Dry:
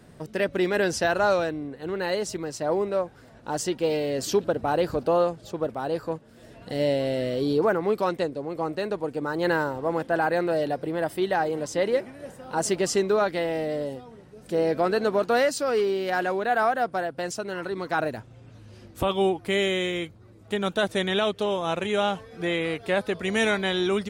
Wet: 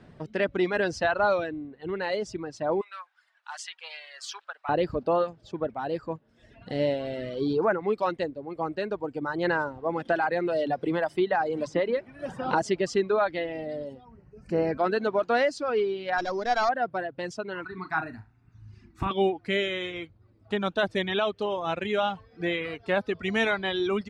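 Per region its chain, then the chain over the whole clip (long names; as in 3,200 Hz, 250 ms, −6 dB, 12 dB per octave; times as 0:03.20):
0:02.81–0:04.69: high-pass filter 1,100 Hz 24 dB per octave + parametric band 9,800 Hz +5.5 dB 0.87 octaves
0:10.05–0:12.62: mains-hum notches 50/100/150/200 Hz + multiband upward and downward compressor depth 100%
0:14.05–0:14.78: Butterworth band-reject 3,500 Hz, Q 2.6 + parametric band 60 Hz +8.5 dB 2.3 octaves
0:16.18–0:16.69: samples sorted by size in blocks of 8 samples + linearly interpolated sample-rate reduction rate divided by 4×
0:17.64–0:19.11: parametric band 3,000 Hz +14 dB 0.45 octaves + phaser with its sweep stopped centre 1,300 Hz, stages 4 + flutter between parallel walls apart 6.4 metres, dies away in 0.3 s
whole clip: low-pass filter 3,800 Hz 12 dB per octave; parametric band 490 Hz −2.5 dB 0.37 octaves; reverb reduction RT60 1.7 s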